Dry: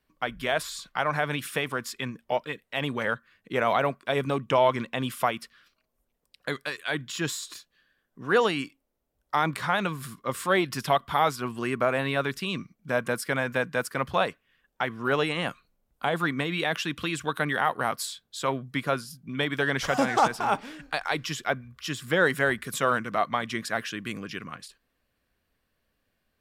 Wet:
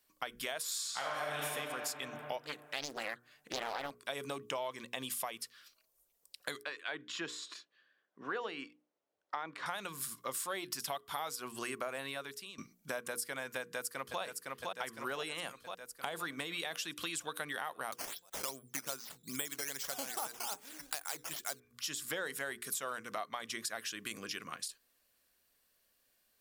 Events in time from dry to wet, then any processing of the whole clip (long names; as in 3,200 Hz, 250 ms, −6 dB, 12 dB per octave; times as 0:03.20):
0:00.64–0:01.44: thrown reverb, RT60 2.4 s, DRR −6.5 dB
0:02.45–0:03.91: highs frequency-modulated by the lows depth 0.91 ms
0:04.67–0:05.39: notch filter 1,400 Hz, Q 7.9
0:06.63–0:09.66: band-pass filter 190–2,500 Hz
0:12.03–0:12.58: fade out quadratic, to −19.5 dB
0:13.60–0:14.21: delay throw 510 ms, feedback 60%, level −7.5 dB
0:17.92–0:21.60: sample-and-hold swept by an LFO 8× 2.5 Hz
whole clip: bass and treble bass −10 dB, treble +14 dB; mains-hum notches 60/120/180/240/300/360/420/480 Hz; downward compressor 5 to 1, threshold −34 dBFS; level −3 dB